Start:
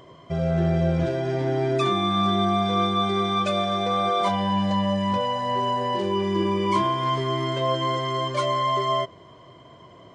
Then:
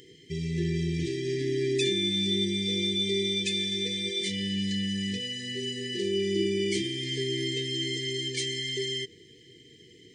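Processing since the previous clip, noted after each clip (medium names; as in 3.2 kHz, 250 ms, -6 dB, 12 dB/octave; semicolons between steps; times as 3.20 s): FFT band-reject 490–1700 Hz; tone controls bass -7 dB, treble +10 dB; trim -1 dB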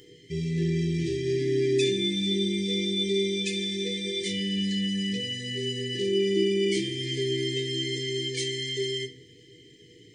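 simulated room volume 37 m³, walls mixed, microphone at 0.41 m; trim -1.5 dB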